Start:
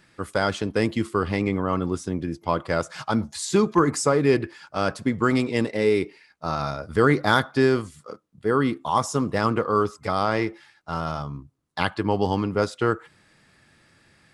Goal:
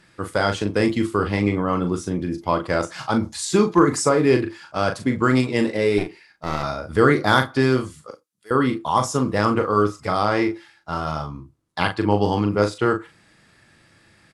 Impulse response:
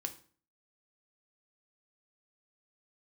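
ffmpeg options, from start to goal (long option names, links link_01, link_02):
-filter_complex "[0:a]asettb=1/sr,asplit=3[link_01][link_02][link_03];[link_01]atrim=end=5.984[link_04];[link_02]atrim=start=5.98:end=6.63,asetpts=PTS-STARTPTS,afade=type=in:duration=0.004:curve=qsin,afade=type=out:start_time=0.646:duration=0.004:curve=qsin,aeval=exprs='clip(val(0),-1,0.0168)':channel_layout=same[link_05];[link_03]atrim=start=6.626[link_06];[link_04][link_05]acrossfade=duration=0.004:curve1=hsin:curve2=qsin[link_07];[link_07][link_06]acrossfade=duration=0.004:curve1=qsin:curve2=hsin,asettb=1/sr,asplit=3[link_08][link_09][link_10];[link_08]atrim=end=8.114[link_11];[link_09]atrim=start=8.11:end=8.51,asetpts=PTS-STARTPTS,afade=type=in:duration=0.004:curve=qsin,afade=type=out:start_time=0.396:duration=0.004:curve=qsin,aderivative[link_12];[link_10]atrim=start=8.506[link_13];[link_11][link_12]acrossfade=duration=0.004:curve1=hsin:curve2=qsin[link_14];[link_14][link_13]acrossfade=duration=0.004:curve1=qsin:curve2=hsin,asplit=2[link_15][link_16];[link_16]adelay=39,volume=-7dB[link_17];[link_15][link_17]amix=inputs=2:normalize=0,asplit=2[link_18][link_19];[1:a]atrim=start_sample=2205,atrim=end_sample=3969[link_20];[link_19][link_20]afir=irnorm=-1:irlink=0,volume=-9dB[link_21];[link_18][link_21]amix=inputs=2:normalize=0" -ar 32000 -c:a aac -b:a 96k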